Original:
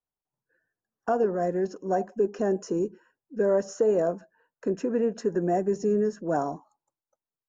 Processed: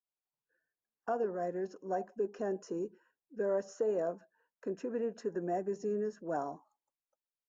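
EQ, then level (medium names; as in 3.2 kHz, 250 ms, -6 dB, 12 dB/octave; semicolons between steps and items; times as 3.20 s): bass shelf 220 Hz -9 dB; treble shelf 5.5 kHz -6.5 dB; -7.5 dB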